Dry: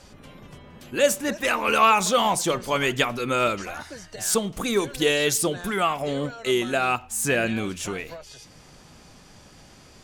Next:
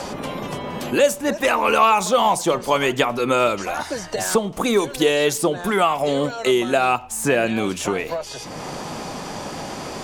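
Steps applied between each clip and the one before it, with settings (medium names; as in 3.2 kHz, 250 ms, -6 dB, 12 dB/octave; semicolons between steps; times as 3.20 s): FFT filter 120 Hz 0 dB, 930 Hz +8 dB, 1.5 kHz +1 dB; three bands compressed up and down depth 70%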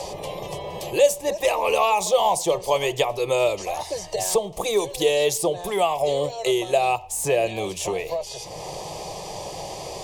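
static phaser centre 600 Hz, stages 4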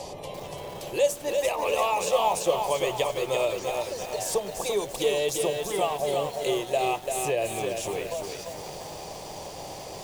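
band noise 78–750 Hz -44 dBFS; bit-crushed delay 342 ms, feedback 55%, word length 6-bit, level -4.5 dB; trim -6 dB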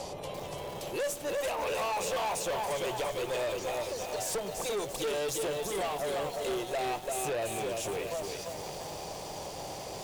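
valve stage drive 29 dB, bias 0.35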